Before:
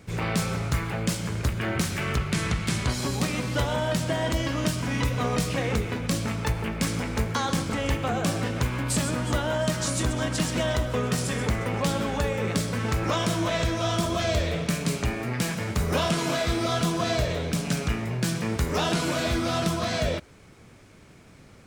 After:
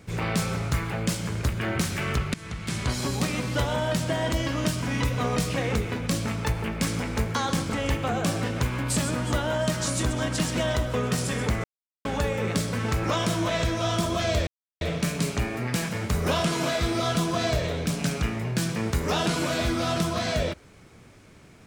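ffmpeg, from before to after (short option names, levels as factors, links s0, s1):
-filter_complex "[0:a]asplit=5[s0][s1][s2][s3][s4];[s0]atrim=end=2.34,asetpts=PTS-STARTPTS,afade=t=out:st=2.336:d=0.004:c=hsin:silence=0.1[s5];[s1]atrim=start=2.34:end=11.64,asetpts=PTS-STARTPTS,afade=t=in:d=0.6:silence=0.1,afade=t=out:st=9.296:d=0.004:c=hsin[s6];[s2]atrim=start=11.64:end=12.05,asetpts=PTS-STARTPTS,volume=0[s7];[s3]atrim=start=12.05:end=14.47,asetpts=PTS-STARTPTS,afade=t=in:d=0.004:c=hsin,afade=t=out:st=2.416:d=0.004:c=hsin,apad=pad_dur=0.34[s8];[s4]atrim=start=14.47,asetpts=PTS-STARTPTS,afade=t=in:d=0.004:c=hsin[s9];[s5][s6][s7][s8][s9]concat=n=5:v=0:a=1"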